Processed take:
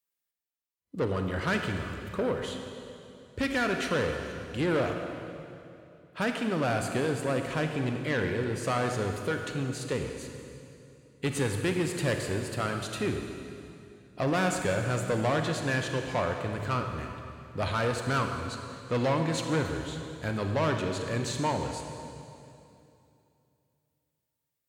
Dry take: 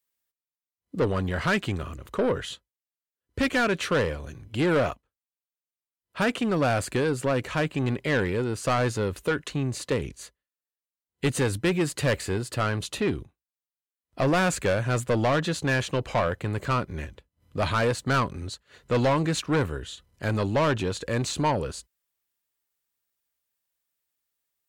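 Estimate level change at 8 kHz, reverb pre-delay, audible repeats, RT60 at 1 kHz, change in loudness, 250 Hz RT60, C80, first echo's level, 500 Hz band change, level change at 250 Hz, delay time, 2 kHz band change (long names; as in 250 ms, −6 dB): −3.5 dB, 30 ms, no echo audible, 2.6 s, −4.0 dB, 3.0 s, 5.5 dB, no echo audible, −3.5 dB, −3.5 dB, no echo audible, −3.5 dB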